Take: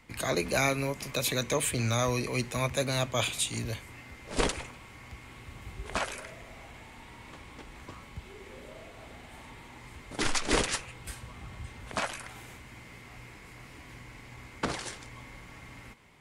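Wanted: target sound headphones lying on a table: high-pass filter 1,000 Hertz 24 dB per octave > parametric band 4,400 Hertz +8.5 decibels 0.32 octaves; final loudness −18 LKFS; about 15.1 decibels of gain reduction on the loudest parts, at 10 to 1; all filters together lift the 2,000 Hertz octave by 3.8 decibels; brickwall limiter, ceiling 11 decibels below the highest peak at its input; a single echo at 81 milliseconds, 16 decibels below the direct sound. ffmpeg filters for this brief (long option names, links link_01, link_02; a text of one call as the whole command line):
ffmpeg -i in.wav -af "equalizer=frequency=2000:width_type=o:gain=4.5,acompressor=threshold=-36dB:ratio=10,alimiter=level_in=7.5dB:limit=-24dB:level=0:latency=1,volume=-7.5dB,highpass=frequency=1000:width=0.5412,highpass=frequency=1000:width=1.3066,equalizer=frequency=4400:width_type=o:width=0.32:gain=8.5,aecho=1:1:81:0.158,volume=26.5dB" out.wav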